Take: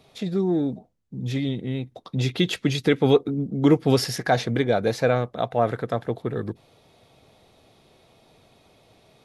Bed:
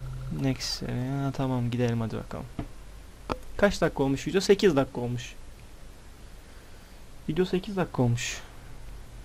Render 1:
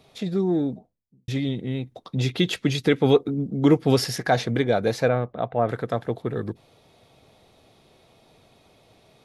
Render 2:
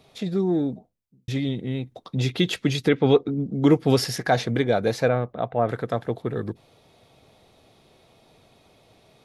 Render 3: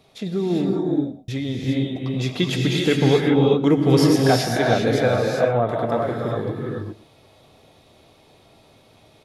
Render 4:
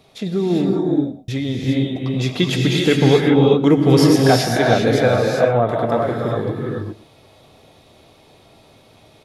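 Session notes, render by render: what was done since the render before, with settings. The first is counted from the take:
0:00.56–0:01.28: fade out and dull; 0:05.08–0:05.69: high-frequency loss of the air 390 metres
0:02.88–0:03.50: low-pass filter 3,400 Hz → 8,200 Hz
single-tap delay 117 ms −18.5 dB; reverb whose tail is shaped and stops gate 430 ms rising, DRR −1.5 dB
level +3.5 dB; brickwall limiter −1 dBFS, peak gain reduction 1 dB

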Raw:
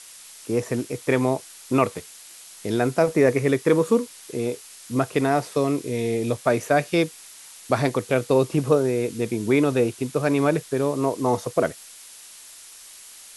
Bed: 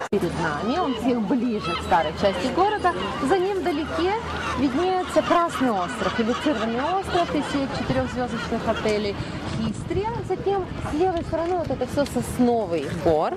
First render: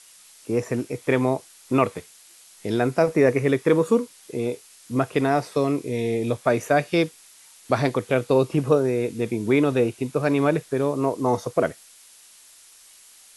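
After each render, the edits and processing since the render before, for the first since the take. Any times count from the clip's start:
noise reduction from a noise print 6 dB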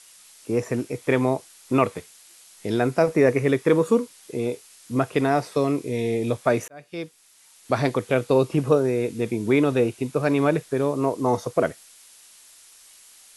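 0:06.68–0:07.89: fade in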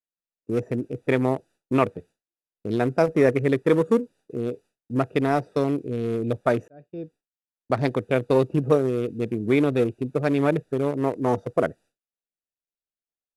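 adaptive Wiener filter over 41 samples
downward expander −45 dBFS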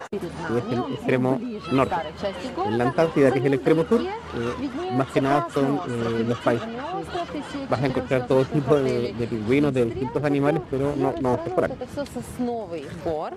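mix in bed −7 dB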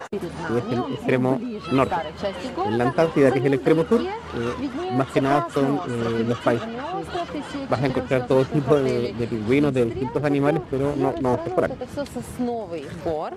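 level +1 dB

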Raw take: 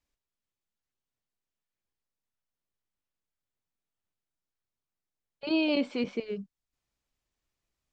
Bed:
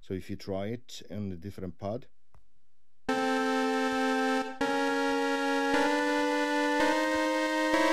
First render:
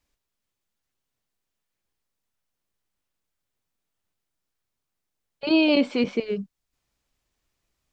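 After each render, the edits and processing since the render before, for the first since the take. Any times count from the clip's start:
level +7.5 dB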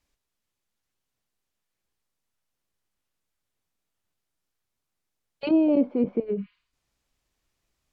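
0:06.40–0:06.69: healed spectral selection 930–4,900 Hz both
treble cut that deepens with the level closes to 670 Hz, closed at −22 dBFS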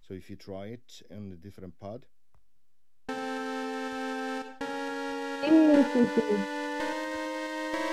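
mix in bed −6 dB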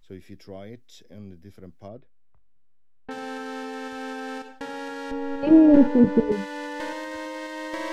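0:01.88–0:03.11: high-frequency loss of the air 340 metres
0:05.11–0:06.32: spectral tilt −4 dB per octave

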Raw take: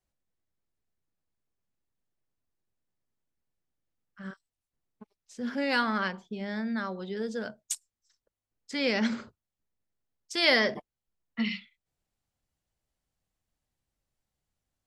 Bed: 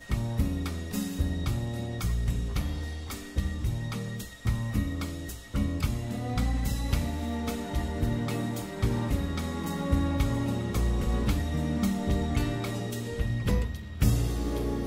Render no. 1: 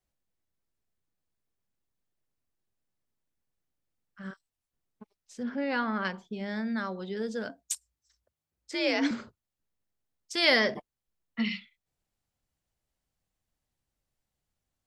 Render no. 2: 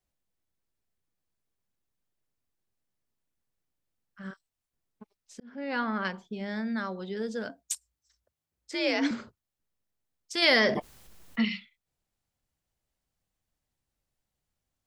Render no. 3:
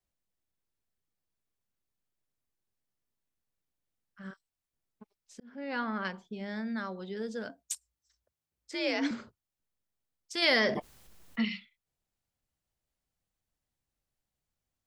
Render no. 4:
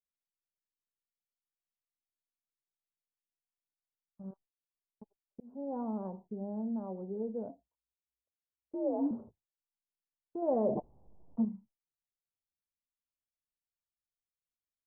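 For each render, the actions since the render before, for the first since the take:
0:05.43–0:06.05: head-to-tape spacing loss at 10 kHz 26 dB; 0:07.49–0:09.11: frequency shifter +56 Hz
0:05.40–0:05.81: fade in; 0:10.42–0:11.45: envelope flattener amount 50%
level −3.5 dB
Butterworth low-pass 900 Hz 48 dB per octave; noise gate with hold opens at −57 dBFS

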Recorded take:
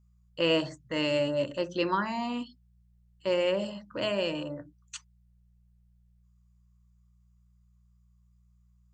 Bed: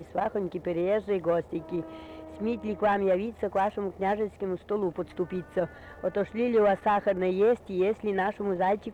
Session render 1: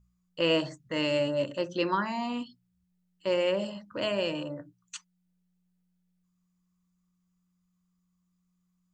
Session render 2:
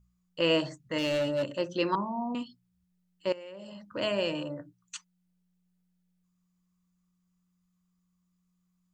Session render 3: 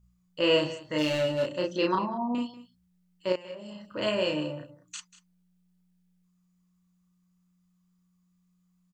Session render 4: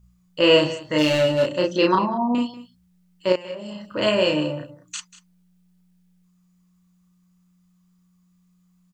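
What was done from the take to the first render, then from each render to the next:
hum removal 60 Hz, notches 2
0:00.98–0:01.43: hard clipping −24.5 dBFS; 0:01.95–0:02.35: Chebyshev low-pass filter 1,100 Hz, order 6; 0:03.32–0:03.95: downward compressor 20 to 1, threshold −40 dBFS
double-tracking delay 33 ms −2 dB; single-tap delay 190 ms −17 dB
level +8 dB

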